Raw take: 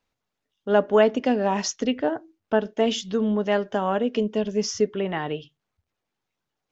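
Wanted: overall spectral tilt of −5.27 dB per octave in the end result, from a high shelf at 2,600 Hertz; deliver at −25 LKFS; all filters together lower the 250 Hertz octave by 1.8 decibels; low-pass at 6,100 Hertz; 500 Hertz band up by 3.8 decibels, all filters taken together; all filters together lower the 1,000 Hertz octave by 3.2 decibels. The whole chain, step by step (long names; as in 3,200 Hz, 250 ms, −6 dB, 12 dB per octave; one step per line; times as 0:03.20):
low-pass filter 6,100 Hz
parametric band 250 Hz −3.5 dB
parametric band 500 Hz +8 dB
parametric band 1,000 Hz −7 dB
high-shelf EQ 2,600 Hz −9 dB
level −3 dB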